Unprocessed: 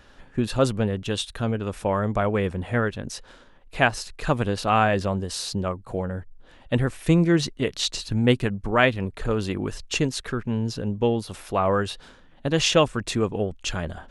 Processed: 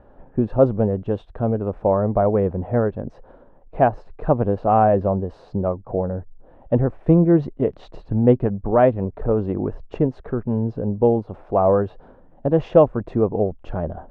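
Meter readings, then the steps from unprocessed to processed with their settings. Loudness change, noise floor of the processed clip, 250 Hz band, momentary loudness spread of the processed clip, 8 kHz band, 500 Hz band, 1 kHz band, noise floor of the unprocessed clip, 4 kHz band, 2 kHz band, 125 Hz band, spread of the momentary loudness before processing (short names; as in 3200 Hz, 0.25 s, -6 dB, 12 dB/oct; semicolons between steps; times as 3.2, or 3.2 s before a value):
+4.0 dB, -49 dBFS, +4.0 dB, 11 LU, under -35 dB, +6.5 dB, +3.5 dB, -51 dBFS, under -20 dB, -11.5 dB, +3.5 dB, 10 LU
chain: synth low-pass 700 Hz, resonance Q 1.6; gain +3 dB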